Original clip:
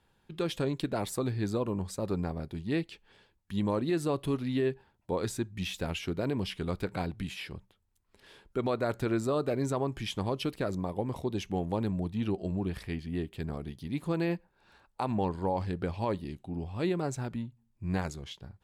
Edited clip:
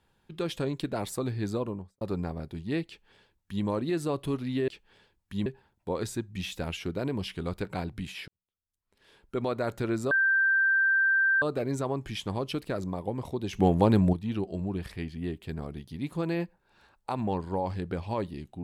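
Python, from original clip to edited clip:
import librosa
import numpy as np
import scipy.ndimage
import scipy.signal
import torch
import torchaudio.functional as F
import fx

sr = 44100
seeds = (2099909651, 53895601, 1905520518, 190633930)

y = fx.studio_fade_out(x, sr, start_s=1.58, length_s=0.43)
y = fx.edit(y, sr, fx.duplicate(start_s=2.87, length_s=0.78, to_s=4.68),
    fx.fade_in_span(start_s=7.5, length_s=1.08, curve='qua'),
    fx.insert_tone(at_s=9.33, length_s=1.31, hz=1570.0, db=-20.5),
    fx.clip_gain(start_s=11.44, length_s=0.6, db=9.5), tone=tone)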